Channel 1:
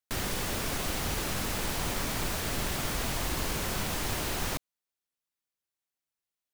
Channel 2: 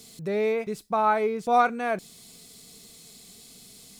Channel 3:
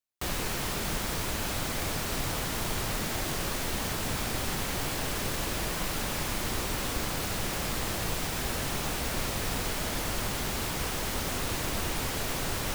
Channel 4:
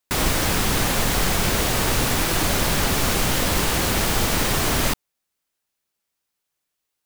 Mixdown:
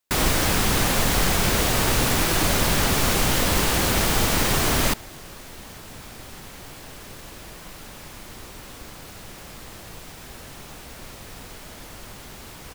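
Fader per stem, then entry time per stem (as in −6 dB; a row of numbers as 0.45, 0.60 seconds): −6.5 dB, muted, −9.0 dB, 0.0 dB; 0.00 s, muted, 1.85 s, 0.00 s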